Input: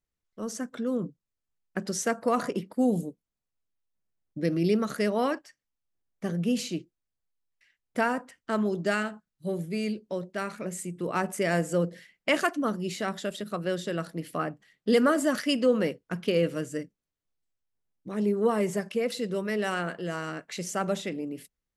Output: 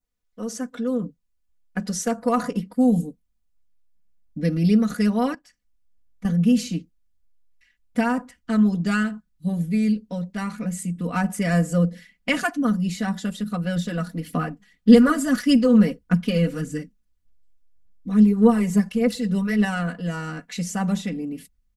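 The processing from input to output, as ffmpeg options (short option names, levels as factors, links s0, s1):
-filter_complex "[0:a]asettb=1/sr,asplit=3[s0][s1][s2];[s0]atrim=end=5.344[s3];[s1]atrim=start=5.34:end=6.25,asetpts=PTS-STARTPTS,afade=t=in:d=0.004:c=qsin,afade=t=out:st=0.906:d=0.004:c=qsin,acompressor=threshold=0.002:ratio=2:attack=3.2:release=140:knee=1:detection=peak[s4];[s2]atrim=start=6.246[s5];[s3][s4]acrossfade=d=0.004:c1=hsin:c2=qsin[s6];[s6][s5]acrossfade=d=0.004:c1=qsin:c2=hsin,asettb=1/sr,asplit=3[s7][s8][s9];[s7]atrim=end=13.764[s10];[s8]atrim=start=13.76:end=19.65,asetpts=PTS-STARTPTS,afade=t=in:d=0.004:c=qsin,afade=t=out:st=5.886:d=0.004:c=qsin,aphaser=in_gain=1:out_gain=1:delay=4.9:decay=0.43:speed=1.7:type=sinusoidal[s11];[s9]atrim=start=19.646[s12];[s10][s11]acrossfade=d=0.004:c1=hsin:c2=qsin[s13];[s13][s12]acrossfade=d=0.004:c1=qsin:c2=hsin,asubboost=boost=7:cutoff=150,aecho=1:1:4.1:0.99,adynamicequalizer=threshold=0.00562:dfrequency=2800:dqfactor=1.6:tfrequency=2800:tqfactor=1.6:attack=5:release=100:ratio=0.375:range=2:mode=cutabove:tftype=bell"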